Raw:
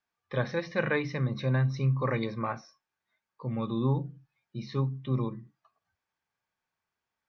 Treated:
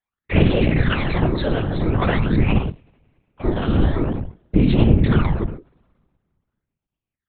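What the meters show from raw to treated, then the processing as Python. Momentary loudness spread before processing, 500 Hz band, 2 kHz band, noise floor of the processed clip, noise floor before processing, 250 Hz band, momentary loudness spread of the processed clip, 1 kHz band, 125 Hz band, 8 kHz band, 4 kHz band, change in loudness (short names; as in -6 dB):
13 LU, +9.5 dB, +8.0 dB, under -85 dBFS, under -85 dBFS, +14.0 dB, 10 LU, +9.5 dB, +10.5 dB, n/a, +14.0 dB, +11.0 dB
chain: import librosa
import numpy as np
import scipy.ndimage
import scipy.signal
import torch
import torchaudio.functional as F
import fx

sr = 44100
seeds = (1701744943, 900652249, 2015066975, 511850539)

p1 = fx.octave_divider(x, sr, octaves=1, level_db=1.0)
p2 = fx.leveller(p1, sr, passes=5)
p3 = p2 + fx.echo_single(p2, sr, ms=115, db=-8.5, dry=0)
p4 = fx.rider(p3, sr, range_db=10, speed_s=2.0)
p5 = fx.fold_sine(p4, sr, drive_db=4, ceiling_db=-11.0)
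p6 = fx.phaser_stages(p5, sr, stages=12, low_hz=110.0, high_hz=1500.0, hz=0.47, feedback_pct=50)
p7 = fx.peak_eq(p6, sr, hz=310.0, db=9.0, octaves=0.3)
p8 = fx.rev_double_slope(p7, sr, seeds[0], early_s=0.28, late_s=2.2, knee_db=-27, drr_db=11.5)
p9 = fx.lpc_vocoder(p8, sr, seeds[1], excitation='pitch_kept', order=8)
p10 = fx.whisperise(p9, sr, seeds[2])
p11 = fx.end_taper(p10, sr, db_per_s=370.0)
y = F.gain(torch.from_numpy(p11), -3.5).numpy()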